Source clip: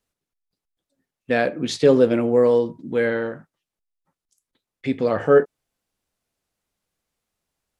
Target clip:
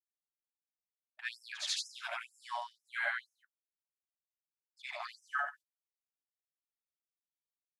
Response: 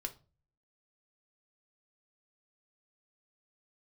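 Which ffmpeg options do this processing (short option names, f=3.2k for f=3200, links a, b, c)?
-af "afftfilt=real='re':imag='-im':win_size=8192:overlap=0.75,agate=range=-43dB:threshold=-40dB:ratio=16:detection=peak,afftfilt=real='re*gte(b*sr/1024,590*pow(5200/590,0.5+0.5*sin(2*PI*2.1*pts/sr)))':imag='im*gte(b*sr/1024,590*pow(5200/590,0.5+0.5*sin(2*PI*2.1*pts/sr)))':win_size=1024:overlap=0.75"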